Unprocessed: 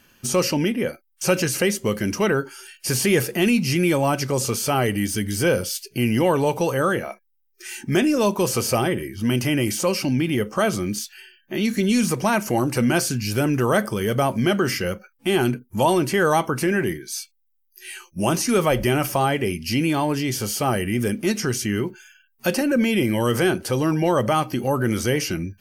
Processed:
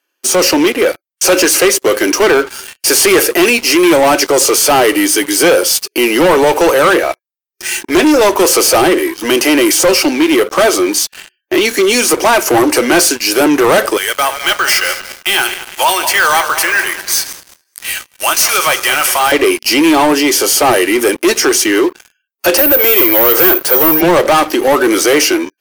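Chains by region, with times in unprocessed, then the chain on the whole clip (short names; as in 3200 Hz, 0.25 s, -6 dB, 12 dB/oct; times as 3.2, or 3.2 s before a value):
13.97–19.32 regenerating reverse delay 0.105 s, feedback 71%, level -12 dB + HPF 1300 Hz + careless resampling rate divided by 2×, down none, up hold
22.57–24.01 HPF 360 Hz 24 dB/oct + careless resampling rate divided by 3×, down filtered, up zero stuff
whole clip: elliptic high-pass 310 Hz, stop band 50 dB; sample leveller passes 5; AGC gain up to 4 dB; gain -2 dB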